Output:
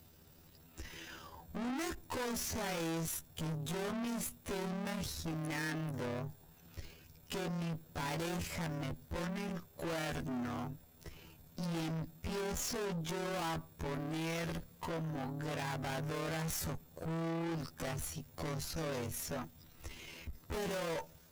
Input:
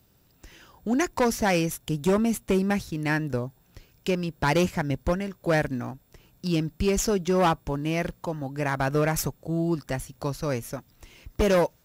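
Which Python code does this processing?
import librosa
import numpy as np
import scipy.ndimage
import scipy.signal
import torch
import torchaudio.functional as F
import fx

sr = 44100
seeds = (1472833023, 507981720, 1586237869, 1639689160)

y = fx.tube_stage(x, sr, drive_db=40.0, bias=0.4)
y = fx.stretch_grains(y, sr, factor=1.8, grain_ms=55.0)
y = y * librosa.db_to_amplitude(4.0)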